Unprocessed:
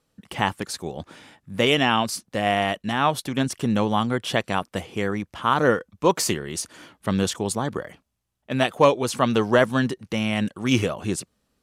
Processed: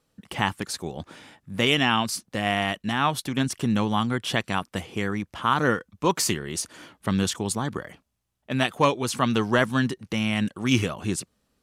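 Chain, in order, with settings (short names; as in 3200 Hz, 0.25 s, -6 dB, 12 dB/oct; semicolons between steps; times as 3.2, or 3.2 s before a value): dynamic EQ 550 Hz, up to -7 dB, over -35 dBFS, Q 1.3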